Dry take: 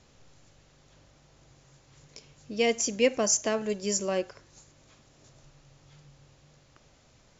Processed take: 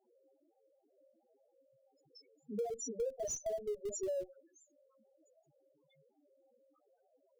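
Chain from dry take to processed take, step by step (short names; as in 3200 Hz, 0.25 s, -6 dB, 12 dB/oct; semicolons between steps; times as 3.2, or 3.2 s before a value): chorus 0.3 Hz, delay 16.5 ms, depth 5.7 ms; Bessel high-pass 340 Hz, order 6; high shelf 5600 Hz -5.5 dB; loudest bins only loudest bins 2; in parallel at -11.5 dB: Schmitt trigger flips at -39 dBFS; on the sum: bell 1200 Hz -9 dB 1.7 oct; compressor 6:1, threshold -46 dBFS, peak gain reduction 16 dB; gain +10 dB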